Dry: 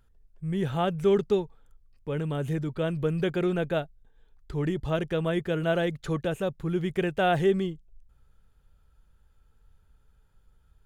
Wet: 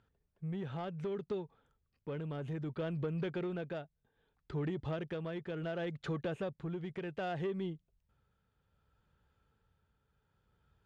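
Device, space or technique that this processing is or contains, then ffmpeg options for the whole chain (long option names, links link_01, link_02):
AM radio: -af "highpass=100,lowpass=4100,acompressor=threshold=-29dB:ratio=10,asoftclip=type=tanh:threshold=-26.5dB,tremolo=f=0.65:d=0.38,volume=-2dB"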